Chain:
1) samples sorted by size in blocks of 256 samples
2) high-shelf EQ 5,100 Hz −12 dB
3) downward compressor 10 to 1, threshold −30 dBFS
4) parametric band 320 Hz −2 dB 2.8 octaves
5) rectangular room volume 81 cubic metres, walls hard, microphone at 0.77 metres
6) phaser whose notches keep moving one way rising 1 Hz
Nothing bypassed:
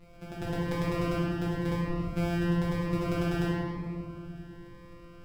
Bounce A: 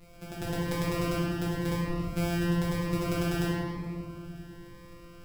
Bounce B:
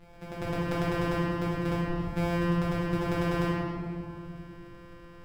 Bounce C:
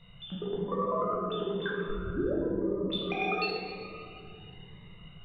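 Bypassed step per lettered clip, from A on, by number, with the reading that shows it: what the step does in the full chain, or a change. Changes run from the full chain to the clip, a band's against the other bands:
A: 2, 4 kHz band +4.0 dB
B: 6, 1 kHz band +2.5 dB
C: 1, 125 Hz band −13.5 dB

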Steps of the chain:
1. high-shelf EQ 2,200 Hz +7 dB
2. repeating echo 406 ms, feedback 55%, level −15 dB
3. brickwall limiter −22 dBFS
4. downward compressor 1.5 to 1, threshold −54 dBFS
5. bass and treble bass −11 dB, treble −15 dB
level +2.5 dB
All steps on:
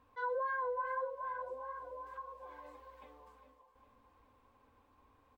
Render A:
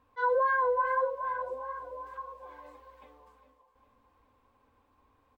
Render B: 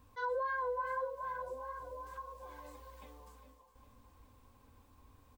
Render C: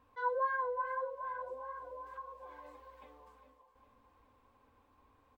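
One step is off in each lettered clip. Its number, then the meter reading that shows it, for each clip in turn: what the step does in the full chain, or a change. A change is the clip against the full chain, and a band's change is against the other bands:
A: 4, average gain reduction 4.0 dB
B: 5, 250 Hz band +4.0 dB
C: 3, change in crest factor +4.0 dB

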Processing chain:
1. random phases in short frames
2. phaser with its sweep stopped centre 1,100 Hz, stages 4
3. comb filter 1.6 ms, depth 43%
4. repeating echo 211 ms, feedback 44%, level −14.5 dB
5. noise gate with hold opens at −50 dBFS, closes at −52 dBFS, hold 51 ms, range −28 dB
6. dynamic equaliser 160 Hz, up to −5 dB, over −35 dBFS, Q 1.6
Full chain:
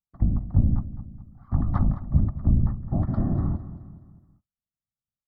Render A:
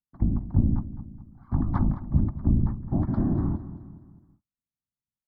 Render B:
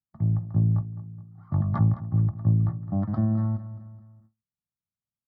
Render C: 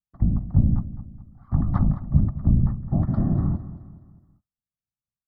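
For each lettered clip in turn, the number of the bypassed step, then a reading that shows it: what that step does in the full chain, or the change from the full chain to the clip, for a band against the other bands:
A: 3, 125 Hz band −3.0 dB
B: 1, 125 Hz band +1.5 dB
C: 6, 250 Hz band +3.0 dB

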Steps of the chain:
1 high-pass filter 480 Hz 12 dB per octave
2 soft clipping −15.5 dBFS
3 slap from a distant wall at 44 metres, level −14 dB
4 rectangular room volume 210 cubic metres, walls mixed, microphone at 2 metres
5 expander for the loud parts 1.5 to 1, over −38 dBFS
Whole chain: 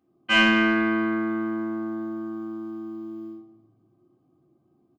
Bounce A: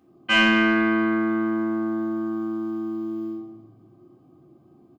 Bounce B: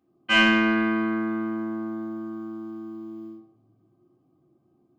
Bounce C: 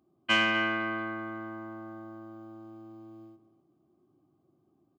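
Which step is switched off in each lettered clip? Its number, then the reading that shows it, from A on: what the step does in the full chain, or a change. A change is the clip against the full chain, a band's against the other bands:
5, change in momentary loudness spread −4 LU
3, change in momentary loudness spread +2 LU
4, change in momentary loudness spread +5 LU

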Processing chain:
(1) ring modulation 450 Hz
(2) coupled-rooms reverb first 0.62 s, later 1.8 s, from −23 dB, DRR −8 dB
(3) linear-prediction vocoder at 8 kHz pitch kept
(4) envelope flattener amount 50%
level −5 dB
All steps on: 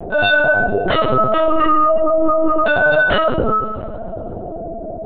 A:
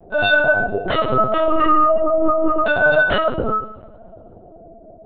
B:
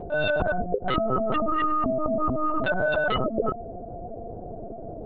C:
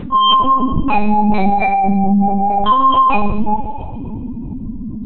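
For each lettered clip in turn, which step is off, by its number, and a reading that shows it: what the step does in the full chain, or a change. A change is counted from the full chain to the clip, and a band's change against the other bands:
4, change in momentary loudness spread −8 LU
2, change in crest factor +2.5 dB
1, change in crest factor −1.5 dB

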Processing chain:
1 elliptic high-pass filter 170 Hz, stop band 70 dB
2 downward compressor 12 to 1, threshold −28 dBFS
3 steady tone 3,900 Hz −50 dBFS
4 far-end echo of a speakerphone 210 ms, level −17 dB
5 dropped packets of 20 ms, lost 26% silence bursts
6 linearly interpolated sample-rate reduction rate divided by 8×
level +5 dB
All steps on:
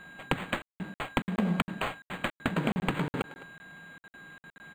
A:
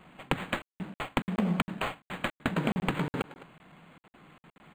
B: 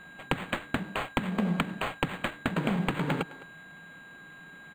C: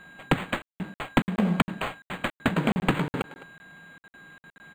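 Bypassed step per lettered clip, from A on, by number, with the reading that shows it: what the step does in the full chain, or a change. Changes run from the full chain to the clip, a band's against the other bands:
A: 3, change in momentary loudness spread −10 LU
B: 5, change in integrated loudness +1.0 LU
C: 2, average gain reduction 3.0 dB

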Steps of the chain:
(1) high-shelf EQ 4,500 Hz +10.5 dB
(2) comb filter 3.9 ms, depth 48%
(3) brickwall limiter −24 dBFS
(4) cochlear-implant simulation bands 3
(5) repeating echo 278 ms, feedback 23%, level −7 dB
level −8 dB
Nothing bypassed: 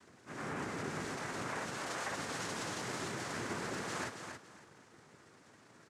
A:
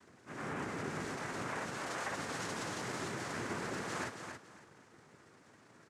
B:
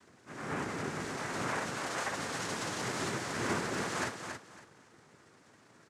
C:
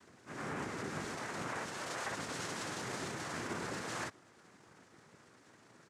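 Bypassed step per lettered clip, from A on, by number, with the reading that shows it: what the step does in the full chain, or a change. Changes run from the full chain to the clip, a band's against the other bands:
1, 8 kHz band −2.0 dB
3, average gain reduction 2.5 dB
5, change in momentary loudness spread −8 LU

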